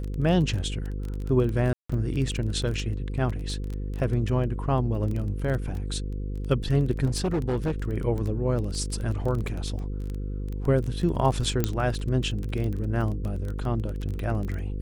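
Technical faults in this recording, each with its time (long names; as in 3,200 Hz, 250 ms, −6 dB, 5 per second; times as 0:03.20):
mains buzz 50 Hz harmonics 10 −31 dBFS
surface crackle 19 per second −29 dBFS
0:01.73–0:01.90: drop-out 165 ms
0:03.29–0:03.30: drop-out 5.9 ms
0:07.05–0:07.82: clipping −21.5 dBFS
0:11.64: click −9 dBFS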